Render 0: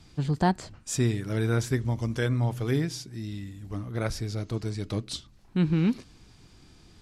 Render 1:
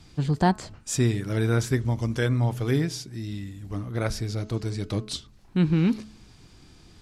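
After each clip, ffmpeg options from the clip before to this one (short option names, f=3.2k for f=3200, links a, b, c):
-af "bandreject=f=214.8:t=h:w=4,bandreject=f=429.6:t=h:w=4,bandreject=f=644.4:t=h:w=4,bandreject=f=859.2:t=h:w=4,bandreject=f=1.074k:t=h:w=4,bandreject=f=1.2888k:t=h:w=4,bandreject=f=1.5036k:t=h:w=4,volume=2.5dB"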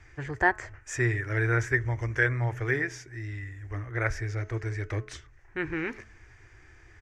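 -af "firequalizer=gain_entry='entry(110,0);entry(180,-25);entry(350,-1);entry(490,-3);entry(1200,0);entry(1800,14);entry(2800,-5);entry(4100,-18);entry(6100,-4);entry(9800,-17)':delay=0.05:min_phase=1,volume=-1dB"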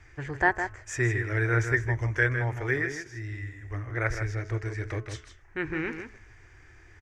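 -filter_complex "[0:a]asplit=2[a][b];[b]adelay=157.4,volume=-8dB,highshelf=f=4k:g=-3.54[c];[a][c]amix=inputs=2:normalize=0"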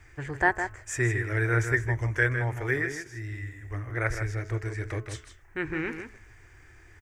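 -af "aexciter=amount=3.6:drive=2.7:freq=7.9k"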